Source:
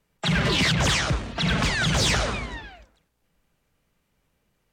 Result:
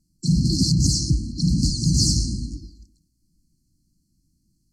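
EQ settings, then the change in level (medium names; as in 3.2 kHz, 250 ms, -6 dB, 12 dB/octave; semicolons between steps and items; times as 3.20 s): brick-wall FIR band-stop 350–4100 Hz; low-pass 11 kHz 12 dB/octave; +5.5 dB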